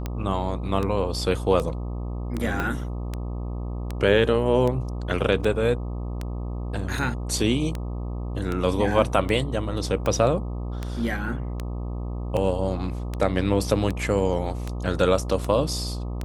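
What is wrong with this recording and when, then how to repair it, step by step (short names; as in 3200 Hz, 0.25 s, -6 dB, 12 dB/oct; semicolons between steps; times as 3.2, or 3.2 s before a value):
buzz 60 Hz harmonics 21 -30 dBFS
tick 78 rpm -15 dBFS
2.6 pop -14 dBFS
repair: de-click; de-hum 60 Hz, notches 21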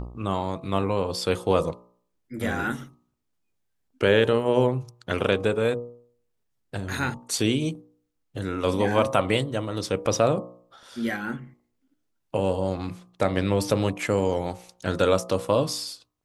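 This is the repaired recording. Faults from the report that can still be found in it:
2.6 pop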